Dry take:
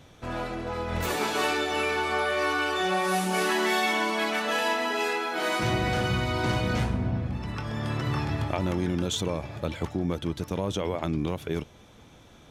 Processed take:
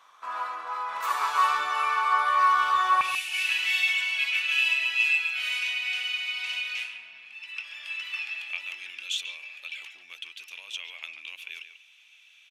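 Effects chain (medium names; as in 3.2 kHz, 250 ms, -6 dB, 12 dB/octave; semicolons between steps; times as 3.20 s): resonant high-pass 1.1 kHz, resonance Q 8.8, from 3.01 s 2.6 kHz; speakerphone echo 140 ms, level -9 dB; trim -5.5 dB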